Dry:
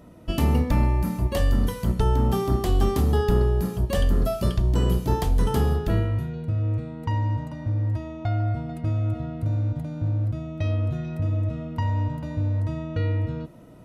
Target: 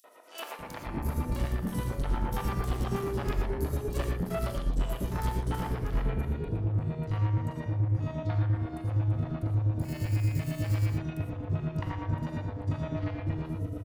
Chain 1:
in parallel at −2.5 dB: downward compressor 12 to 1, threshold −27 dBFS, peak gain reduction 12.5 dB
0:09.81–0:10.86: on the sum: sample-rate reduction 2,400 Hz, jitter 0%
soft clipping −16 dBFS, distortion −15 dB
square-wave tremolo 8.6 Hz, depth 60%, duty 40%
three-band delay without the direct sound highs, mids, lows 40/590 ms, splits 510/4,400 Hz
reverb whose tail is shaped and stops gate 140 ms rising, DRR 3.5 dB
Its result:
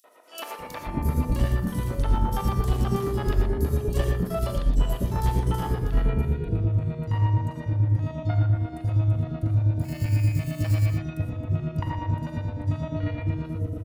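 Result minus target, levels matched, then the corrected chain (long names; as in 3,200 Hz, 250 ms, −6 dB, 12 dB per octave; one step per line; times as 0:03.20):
soft clipping: distortion −8 dB
in parallel at −2.5 dB: downward compressor 12 to 1, threshold −27 dBFS, peak gain reduction 12.5 dB
0:09.81–0:10.86: on the sum: sample-rate reduction 2,400 Hz, jitter 0%
soft clipping −26 dBFS, distortion −7 dB
square-wave tremolo 8.6 Hz, depth 60%, duty 40%
three-band delay without the direct sound highs, mids, lows 40/590 ms, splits 510/4,400 Hz
reverb whose tail is shaped and stops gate 140 ms rising, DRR 3.5 dB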